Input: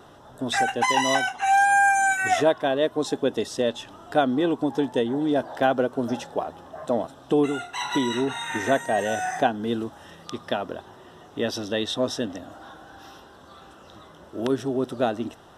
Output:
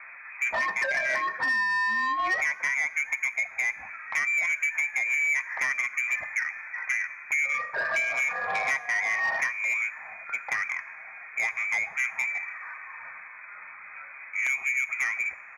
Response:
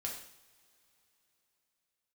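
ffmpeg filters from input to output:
-filter_complex "[0:a]aecho=1:1:7.2:0.31,acompressor=threshold=-24dB:ratio=12,lowpass=f=2.2k:t=q:w=0.5098,lowpass=f=2.2k:t=q:w=0.6013,lowpass=f=2.2k:t=q:w=0.9,lowpass=f=2.2k:t=q:w=2.563,afreqshift=-2600,asoftclip=type=tanh:threshold=-25dB,highpass=f=130:p=1,asplit=2[a][b];[1:a]atrim=start_sample=2205,asetrate=38808,aresample=44100,lowshelf=f=270:g=10[c];[b][c]afir=irnorm=-1:irlink=0,volume=-14.5dB[d];[a][d]amix=inputs=2:normalize=0,volume=3dB"

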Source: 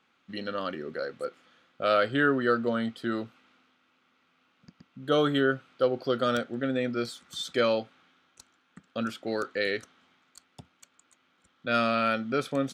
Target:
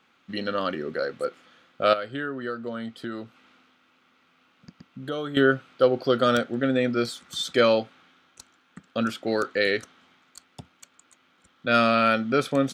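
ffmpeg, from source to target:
-filter_complex "[0:a]asettb=1/sr,asplit=3[a][b][c];[a]atrim=end=1.934[d];[b]atrim=start=1.93:end=5.37,asetpts=PTS-STARTPTS,afade=t=in:d=0.004:c=qsin,afade=t=out:st=3.436:d=0.004:c=qsin,acompressor=threshold=-40dB:ratio=2.5[e];[c]atrim=start=5.366[f];[d][e]acrossfade=d=0.004:c1=hsin:c2=qsin[g];[g][f]acrossfade=d=0.004:c1=qsin:c2=hsin,volume=5.5dB"

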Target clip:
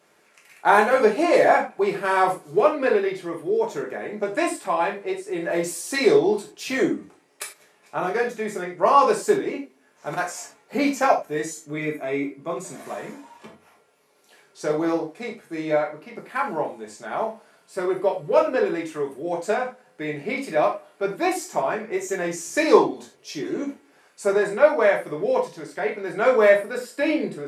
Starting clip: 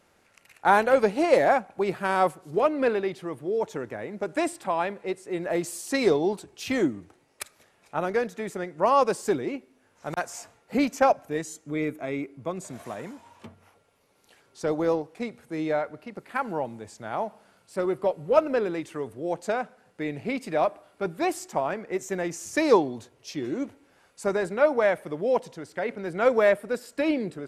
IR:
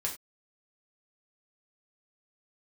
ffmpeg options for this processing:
-filter_complex "[0:a]highpass=210[a];[1:a]atrim=start_sample=2205[b];[a][b]afir=irnorm=-1:irlink=0,volume=1.5dB"

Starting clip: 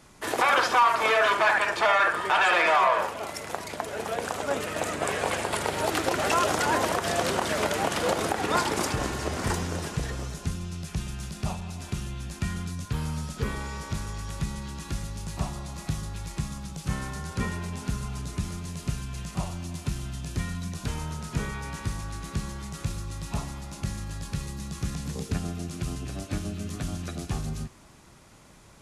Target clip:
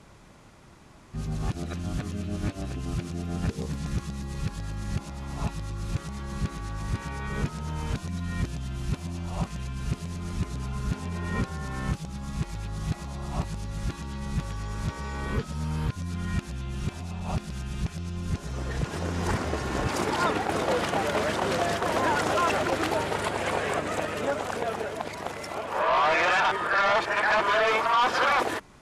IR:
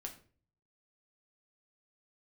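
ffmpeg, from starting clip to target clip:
-af "areverse,aemphasis=mode=reproduction:type=cd,aeval=exprs='0.266*sin(PI/2*1.58*val(0)/0.266)':c=same,volume=-6.5dB"

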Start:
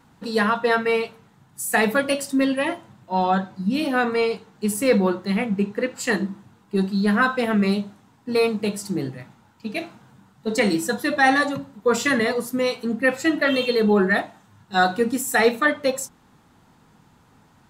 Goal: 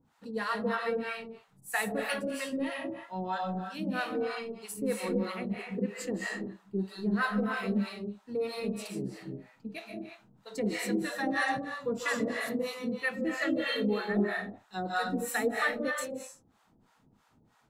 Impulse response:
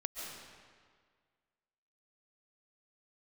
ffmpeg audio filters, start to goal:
-filter_complex "[1:a]atrim=start_sample=2205,afade=t=out:st=0.42:d=0.01,atrim=end_sample=18963[a];[0:a][a]afir=irnorm=-1:irlink=0,acrossover=split=610[b][c];[b]aeval=exprs='val(0)*(1-1/2+1/2*cos(2*PI*3.1*n/s))':c=same[d];[c]aeval=exprs='val(0)*(1-1/2-1/2*cos(2*PI*3.1*n/s))':c=same[e];[d][e]amix=inputs=2:normalize=0,volume=-6.5dB"

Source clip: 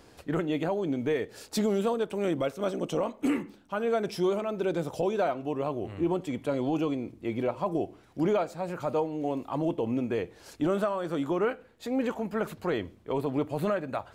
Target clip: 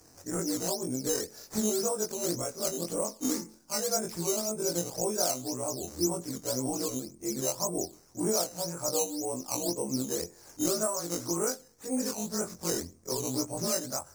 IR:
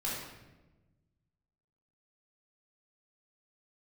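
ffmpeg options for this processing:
-af "afftfilt=real='re':imag='-im':win_size=2048:overlap=0.75,aemphasis=mode=reproduction:type=cd,acrusher=samples=9:mix=1:aa=0.000001:lfo=1:lforange=9:lforate=1.9,highshelf=f=4.3k:t=q:w=3:g=10.5"

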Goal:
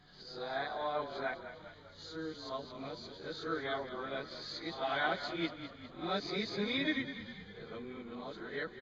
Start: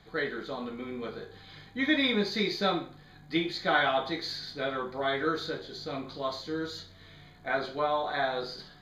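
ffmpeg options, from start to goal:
-filter_complex "[0:a]areverse,asplit=2[a][b];[b]asplit=6[c][d][e][f][g][h];[c]adelay=201,afreqshift=-36,volume=-11dB[i];[d]adelay=402,afreqshift=-72,volume=-16dB[j];[e]adelay=603,afreqshift=-108,volume=-21.1dB[k];[f]adelay=804,afreqshift=-144,volume=-26.1dB[l];[g]adelay=1005,afreqshift=-180,volume=-31.1dB[m];[h]adelay=1206,afreqshift=-216,volume=-36.2dB[n];[i][j][k][l][m][n]amix=inputs=6:normalize=0[o];[a][o]amix=inputs=2:normalize=0,aresample=16000,aresample=44100,volume=-8dB"

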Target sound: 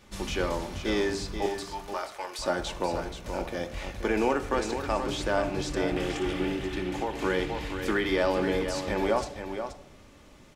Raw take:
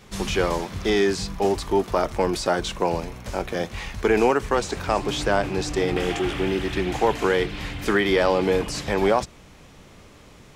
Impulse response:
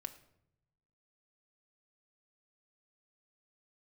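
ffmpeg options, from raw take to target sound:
-filter_complex "[0:a]asettb=1/sr,asplit=3[a][b][c];[a]atrim=end=1.464[d];[b]atrim=start=1.46:end=2.39,asetpts=PTS-STARTPTS,afade=t=in:d=0.004:c=qsin,afade=t=out:st=0.926:d=0.004:c=qsin,highpass=980[e];[c]atrim=start=2.386[f];[d][e]acrossfade=d=0.004:c1=hsin:c2=qsin[g];[g][f]acrossfade=d=0.004:c1=qsin:c2=hsin,aecho=1:1:479:0.376[h];[1:a]atrim=start_sample=2205[i];[h][i]afir=irnorm=-1:irlink=0,asettb=1/sr,asplit=3[j][k][l];[j]atrim=end=6.504[m];[k]atrim=start=6.5:end=7.19,asetpts=PTS-STARTPTS,afade=t=in:d=0.004:c=qsin,afade=t=out:st=0.686:d=0.004:c=qsin,acompressor=threshold=-24dB:ratio=6[n];[l]atrim=start=7.186[o];[m][n]acrossfade=d=0.004:c1=hsin:c2=qsin[p];[p][o]acrossfade=d=0.004:c1=qsin:c2=hsin,volume=-3dB"

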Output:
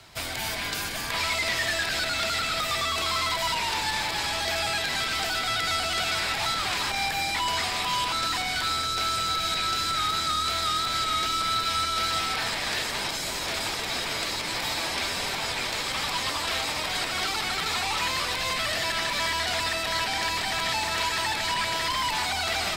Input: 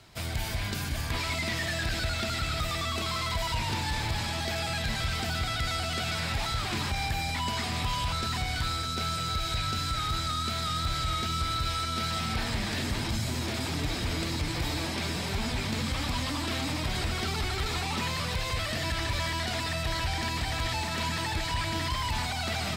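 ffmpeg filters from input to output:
-filter_complex "[0:a]acrossover=split=510[a][b];[a]aeval=exprs='0.015*(abs(mod(val(0)/0.015+3,4)-2)-1)':c=same[c];[b]acontrast=49[d];[c][d]amix=inputs=2:normalize=0"

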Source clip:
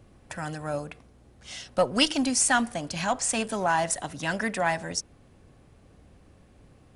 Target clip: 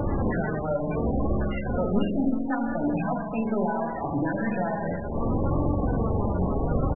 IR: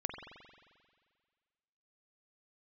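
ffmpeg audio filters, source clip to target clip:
-filter_complex "[0:a]aeval=exprs='val(0)+0.5*0.0473*sgn(val(0))':c=same,acompressor=threshold=-32dB:ratio=16,asettb=1/sr,asplit=3[a][b][c];[a]atrim=end=1.794[d];[b]atrim=start=1.79:end=2.36,asetpts=PTS-STARTPTS,afade=t=in:d=0.004:c=qsin,afade=t=out:st=0.566:d=0.004:c=qsin,lowshelf=f=130:g=11[e];[c]atrim=start=2.356[f];[d][e]acrossfade=d=0.004:c1=hsin:c2=qsin[g];[g][f]acrossfade=d=0.004:c1=qsin:c2=hsin,asplit=2[h][i];[i]adelay=113,lowpass=f=2.8k:p=1,volume=-23.5dB,asplit=2[j][k];[k]adelay=113,lowpass=f=2.8k:p=1,volume=0.16[l];[h][j][l]amix=inputs=3:normalize=0[m];[1:a]atrim=start_sample=2205[n];[m][n]afir=irnorm=-1:irlink=0,asettb=1/sr,asplit=3[o][p][q];[o]atrim=end=2.974[r];[p]atrim=start=2.97:end=3.49,asetpts=PTS-STARTPTS,afade=t=in:d=0.004:c=qsin,afade=t=out:st=0.516:d=0.004:c=qsin,acrossover=split=6100[s][t];[t]acompressor=threshold=-53dB:ratio=4:attack=1:release=60[u];[s][u]amix=inputs=2:normalize=0[v];[q]atrim=start=3.486[w];[r][v]acrossfade=d=0.004:c1=hsin:c2=qsin[x];[x][w]acrossfade=d=0.004:c1=qsin:c2=hsin,acrusher=bits=5:mode=log:mix=0:aa=0.000001,flanger=delay=3.4:depth=1.6:regen=58:speed=0.71:shape=sinusoidal,tiltshelf=f=1.4k:g=7,bandreject=f=50:t=h:w=6,bandreject=f=100:t=h:w=6,bandreject=f=150:t=h:w=6,bandreject=f=200:t=h:w=6,bandreject=f=250:t=h:w=6,bandreject=f=300:t=h:w=6,volume=7.5dB" -ar 22050 -c:a libmp3lame -b:a 8k

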